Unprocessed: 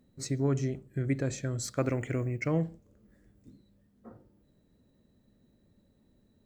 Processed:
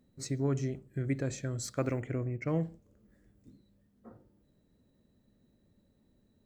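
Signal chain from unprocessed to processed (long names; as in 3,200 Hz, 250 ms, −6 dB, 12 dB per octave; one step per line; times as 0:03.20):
0:02.00–0:02.48: high-shelf EQ 2,400 Hz −10.5 dB
level −2.5 dB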